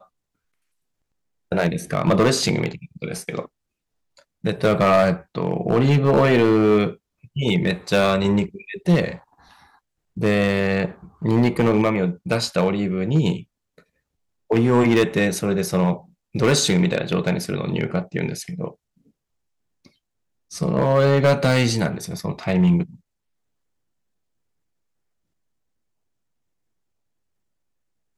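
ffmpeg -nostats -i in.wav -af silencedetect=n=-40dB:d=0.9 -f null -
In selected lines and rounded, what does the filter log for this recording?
silence_start: 0.00
silence_end: 1.52 | silence_duration: 1.52
silence_start: 18.73
silence_end: 19.85 | silence_duration: 1.13
silence_start: 22.95
silence_end: 28.17 | silence_duration: 5.22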